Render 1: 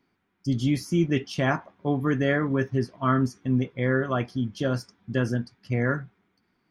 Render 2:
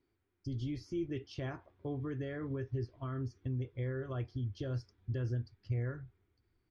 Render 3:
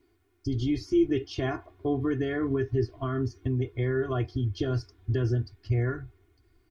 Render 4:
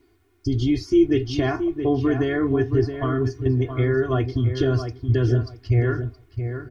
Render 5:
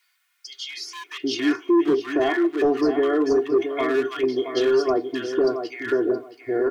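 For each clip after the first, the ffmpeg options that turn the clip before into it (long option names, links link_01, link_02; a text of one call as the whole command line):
ffmpeg -i in.wav -af "asubboost=boost=2.5:cutoff=150,alimiter=limit=-21.5dB:level=0:latency=1:release=261,firequalizer=gain_entry='entry(100,0);entry(180,-19);entry(340,-3);entry(570,-10);entry(850,-14);entry(4600,-10);entry(10000,-30)':delay=0.05:min_phase=1" out.wav
ffmpeg -i in.wav -af "aecho=1:1:2.8:0.87,volume=9dB" out.wav
ffmpeg -i in.wav -filter_complex "[0:a]asplit=2[link_01][link_02];[link_02]adelay=672,lowpass=frequency=2200:poles=1,volume=-8dB,asplit=2[link_03][link_04];[link_04]adelay=672,lowpass=frequency=2200:poles=1,volume=0.2,asplit=2[link_05][link_06];[link_06]adelay=672,lowpass=frequency=2200:poles=1,volume=0.2[link_07];[link_01][link_03][link_05][link_07]amix=inputs=4:normalize=0,volume=6.5dB" out.wav
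ffmpeg -i in.wav -filter_complex "[0:a]highpass=frequency=330:width=0.5412,highpass=frequency=330:width=1.3066,asoftclip=type=hard:threshold=-19.5dB,acrossover=split=1300[link_01][link_02];[link_01]adelay=770[link_03];[link_03][link_02]amix=inputs=2:normalize=0,volume=5.5dB" out.wav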